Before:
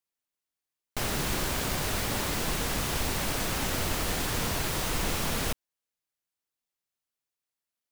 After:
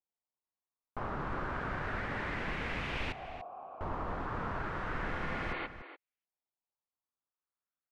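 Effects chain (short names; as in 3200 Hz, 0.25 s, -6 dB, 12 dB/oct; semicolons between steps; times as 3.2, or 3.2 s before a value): 3.12–3.81 vowel filter a; 5.17–5.64 spectral repair 260–4700 Hz before; LFO low-pass saw up 0.32 Hz 780–2600 Hz; outdoor echo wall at 50 m, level -11 dB; gain -7.5 dB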